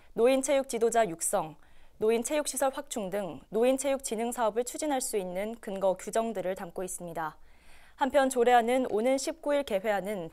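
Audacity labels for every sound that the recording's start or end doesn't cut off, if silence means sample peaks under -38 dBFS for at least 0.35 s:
2.010000	7.290000	sound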